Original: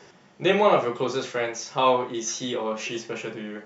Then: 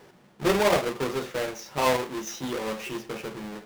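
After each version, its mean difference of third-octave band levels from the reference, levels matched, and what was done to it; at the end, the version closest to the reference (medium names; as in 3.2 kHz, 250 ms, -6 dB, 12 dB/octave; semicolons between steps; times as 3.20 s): 7.5 dB: square wave that keeps the level; treble shelf 5.4 kHz -6 dB; trim -6.5 dB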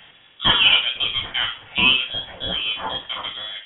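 10.5 dB: treble shelf 2.1 kHz +6 dB; frequency inversion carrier 3.6 kHz; trim +2.5 dB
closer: first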